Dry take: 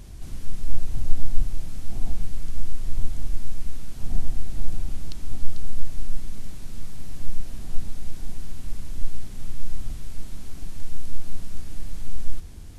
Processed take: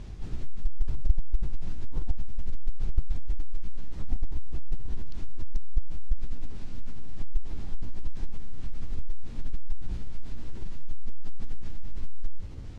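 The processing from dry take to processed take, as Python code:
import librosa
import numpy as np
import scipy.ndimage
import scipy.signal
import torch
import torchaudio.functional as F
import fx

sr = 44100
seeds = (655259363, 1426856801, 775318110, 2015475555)

y = fx.pitch_ramps(x, sr, semitones=5.5, every_ms=506)
y = fx.air_absorb(y, sr, metres=120.0)
y = fx.transformer_sat(y, sr, knee_hz=69.0)
y = F.gain(torch.from_numpy(y), 2.0).numpy()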